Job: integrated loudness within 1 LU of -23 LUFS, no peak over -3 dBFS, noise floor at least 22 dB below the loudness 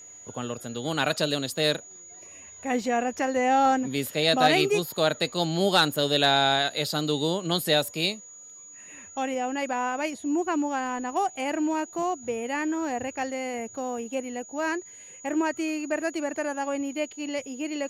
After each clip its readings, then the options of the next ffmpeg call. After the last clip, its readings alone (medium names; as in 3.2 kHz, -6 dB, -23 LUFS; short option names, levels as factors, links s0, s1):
steady tone 6.8 kHz; tone level -44 dBFS; loudness -26.5 LUFS; peak level -8.0 dBFS; loudness target -23.0 LUFS
-> -af "bandreject=f=6800:w=30"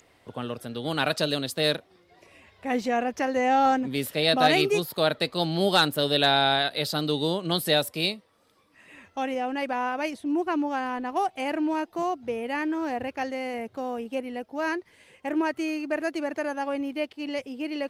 steady tone not found; loudness -26.5 LUFS; peak level -8.0 dBFS; loudness target -23.0 LUFS
-> -af "volume=1.5"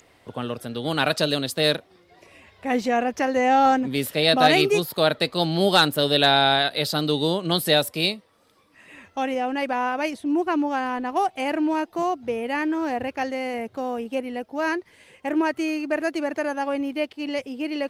loudness -23.0 LUFS; peak level -4.5 dBFS; noise floor -59 dBFS